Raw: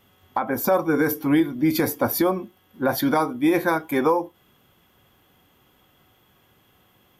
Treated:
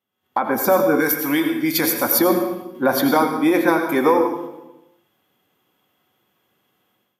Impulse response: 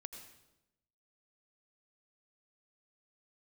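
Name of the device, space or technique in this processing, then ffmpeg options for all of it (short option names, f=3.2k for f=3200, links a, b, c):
far laptop microphone: -filter_complex "[0:a]agate=range=-14dB:threshold=-53dB:ratio=16:detection=peak[a];[1:a]atrim=start_sample=2205[b];[a][b]afir=irnorm=-1:irlink=0,highpass=180,dynaudnorm=f=110:g=5:m=15dB,asettb=1/sr,asplit=3[c][d][e];[c]atrim=end=1.004[f];[d]atrim=start=1:end=2.19,asetpts=PTS-STARTPTS,afade=t=in:d=0.004:c=qsin,afade=t=out:st=1.186:d=0.004:c=qsin,tiltshelf=f=1.2k:g=-5.5[g];[e]atrim=start=2.186[h];[f][g]acrossfade=d=0.004:c1=hsin:c2=qsin[i];[i][h]acrossfade=d=0.004:c1=qsin:c2=hsin,volume=-3dB"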